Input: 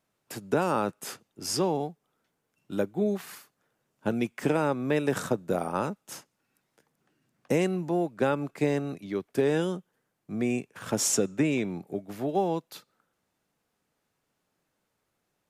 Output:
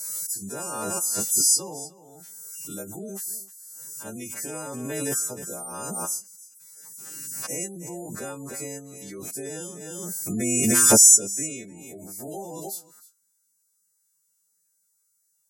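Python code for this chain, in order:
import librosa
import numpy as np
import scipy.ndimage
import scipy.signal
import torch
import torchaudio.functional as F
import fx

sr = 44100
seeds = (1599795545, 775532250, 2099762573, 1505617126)

p1 = fx.freq_snap(x, sr, grid_st=2)
p2 = fx.high_shelf_res(p1, sr, hz=5000.0, db=13.0, q=1.5)
p3 = fx.spec_gate(p2, sr, threshold_db=-25, keep='strong')
p4 = p3 + fx.echo_single(p3, sr, ms=305, db=-18.5, dry=0)
p5 = fx.pre_swell(p4, sr, db_per_s=22.0)
y = p5 * 10.0 ** (-10.5 / 20.0)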